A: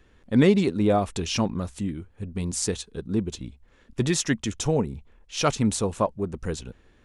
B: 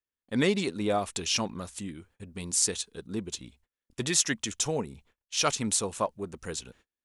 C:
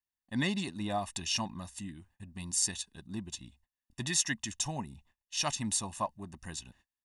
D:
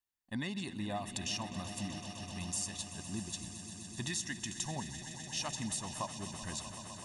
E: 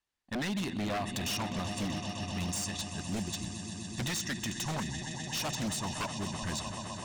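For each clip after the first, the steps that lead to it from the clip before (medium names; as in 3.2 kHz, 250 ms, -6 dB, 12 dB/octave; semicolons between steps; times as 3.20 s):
gate -48 dBFS, range -34 dB; tilt EQ +2.5 dB/octave; trim -3.5 dB
comb 1.1 ms, depth 88%; trim -7 dB
compression, threshold -35 dBFS, peak gain reduction 11 dB; on a send: echo with a slow build-up 127 ms, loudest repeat 5, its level -14 dB
distance through air 65 m; wavefolder -36 dBFS; trim +8 dB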